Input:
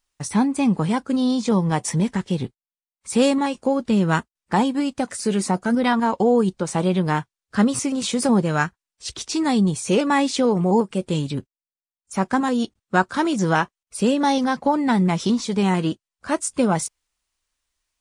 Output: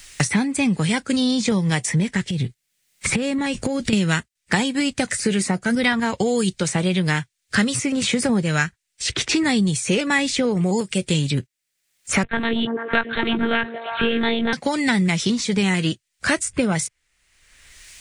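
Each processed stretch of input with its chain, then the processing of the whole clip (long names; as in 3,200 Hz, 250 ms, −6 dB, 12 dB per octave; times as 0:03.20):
0:02.30–0:03.93: low-shelf EQ 190 Hz +11.5 dB + downward compressor, threshold −28 dBFS
0:12.23–0:14.53: one-pitch LPC vocoder at 8 kHz 230 Hz + echo through a band-pass that steps 114 ms, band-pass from 310 Hz, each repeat 0.7 octaves, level −3 dB
whole clip: graphic EQ with 10 bands 125 Hz +6 dB, 250 Hz −3 dB, 1,000 Hz −8 dB, 2,000 Hz +10 dB, 4,000 Hz +3 dB, 8,000 Hz +7 dB; multiband upward and downward compressor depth 100%; level −1 dB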